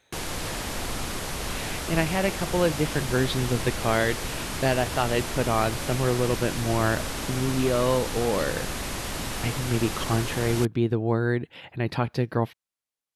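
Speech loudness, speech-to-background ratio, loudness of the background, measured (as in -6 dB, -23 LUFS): -26.5 LUFS, 5.0 dB, -31.5 LUFS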